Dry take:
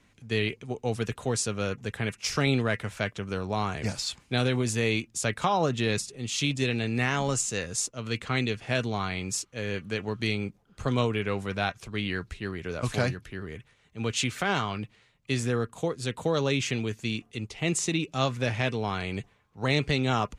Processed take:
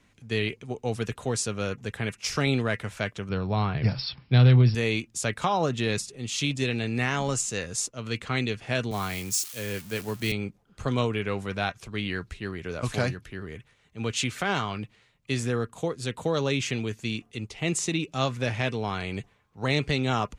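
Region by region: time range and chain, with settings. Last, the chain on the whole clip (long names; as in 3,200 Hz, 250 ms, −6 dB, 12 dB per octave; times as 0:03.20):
0:03.29–0:04.75: parametric band 130 Hz +14 dB 0.71 octaves + hard clipping −10 dBFS + linear-phase brick-wall low-pass 5,600 Hz
0:08.91–0:10.32: spike at every zero crossing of −29 dBFS + multiband upward and downward expander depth 40%
whole clip: no processing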